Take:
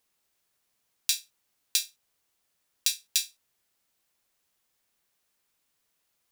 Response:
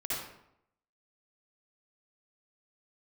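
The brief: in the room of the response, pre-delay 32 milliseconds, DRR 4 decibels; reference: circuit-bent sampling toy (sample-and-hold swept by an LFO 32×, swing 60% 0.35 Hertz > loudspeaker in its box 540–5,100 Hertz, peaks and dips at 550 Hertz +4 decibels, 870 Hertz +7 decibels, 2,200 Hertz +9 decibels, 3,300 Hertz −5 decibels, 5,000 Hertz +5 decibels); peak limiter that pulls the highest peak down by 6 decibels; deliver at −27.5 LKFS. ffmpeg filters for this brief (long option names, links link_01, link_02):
-filter_complex "[0:a]alimiter=limit=-8.5dB:level=0:latency=1,asplit=2[link_01][link_02];[1:a]atrim=start_sample=2205,adelay=32[link_03];[link_02][link_03]afir=irnorm=-1:irlink=0,volume=-9dB[link_04];[link_01][link_04]amix=inputs=2:normalize=0,acrusher=samples=32:mix=1:aa=0.000001:lfo=1:lforange=19.2:lforate=0.35,highpass=540,equalizer=frequency=550:width_type=q:width=4:gain=4,equalizer=frequency=870:width_type=q:width=4:gain=7,equalizer=frequency=2200:width_type=q:width=4:gain=9,equalizer=frequency=3300:width_type=q:width=4:gain=-5,equalizer=frequency=5000:width_type=q:width=4:gain=5,lowpass=frequency=5100:width=0.5412,lowpass=frequency=5100:width=1.3066,volume=11dB"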